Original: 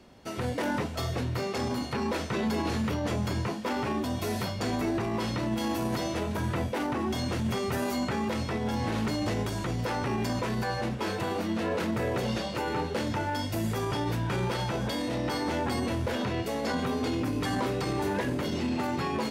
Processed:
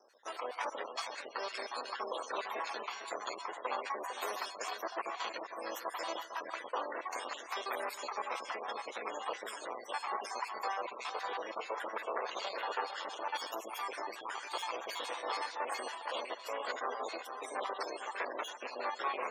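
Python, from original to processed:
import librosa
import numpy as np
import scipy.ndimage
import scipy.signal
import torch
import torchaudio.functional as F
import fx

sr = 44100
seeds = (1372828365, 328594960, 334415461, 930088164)

p1 = fx.spec_dropout(x, sr, seeds[0], share_pct=57)
p2 = fx.high_shelf(p1, sr, hz=2700.0, db=11.0)
p3 = p2 + 10.0 ** (-9.5 / 20.0) * np.pad(p2, (int(453 * sr / 1000.0), 0))[:len(p2)]
p4 = fx.sample_hold(p3, sr, seeds[1], rate_hz=6800.0, jitter_pct=0)
p5 = p3 + (p4 * librosa.db_to_amplitude(-4.5))
p6 = np.maximum(p5, 0.0)
p7 = fx.peak_eq(p6, sr, hz=1100.0, db=6.0, octaves=0.39)
p8 = p7 + fx.echo_feedback(p7, sr, ms=148, feedback_pct=55, wet_db=-17.5, dry=0)
p9 = fx.spec_gate(p8, sr, threshold_db=-30, keep='strong')
p10 = scipy.signal.sosfilt(scipy.signal.butter(4, 480.0, 'highpass', fs=sr, output='sos'), p9)
y = p10 * librosa.db_to_amplitude(-3.5)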